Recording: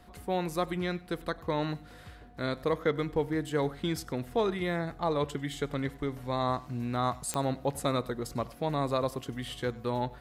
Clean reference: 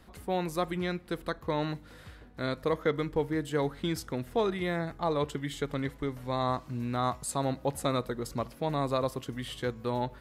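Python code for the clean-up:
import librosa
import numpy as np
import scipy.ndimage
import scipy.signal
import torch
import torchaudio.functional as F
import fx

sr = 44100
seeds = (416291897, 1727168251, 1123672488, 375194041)

y = fx.fix_declick_ar(x, sr, threshold=10.0)
y = fx.notch(y, sr, hz=720.0, q=30.0)
y = fx.fix_echo_inverse(y, sr, delay_ms=97, level_db=-22.0)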